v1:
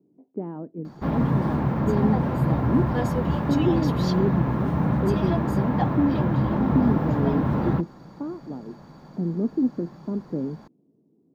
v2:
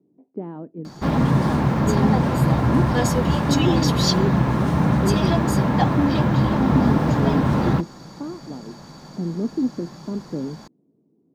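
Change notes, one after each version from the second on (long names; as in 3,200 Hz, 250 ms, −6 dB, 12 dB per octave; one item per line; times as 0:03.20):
background +4.0 dB
master: add parametric band 7,200 Hz +14 dB 2.3 octaves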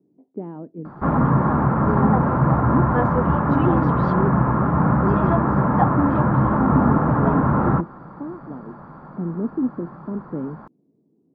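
background: add low-pass with resonance 1,300 Hz, resonance Q 3
master: add parametric band 7,200 Hz −14 dB 2.3 octaves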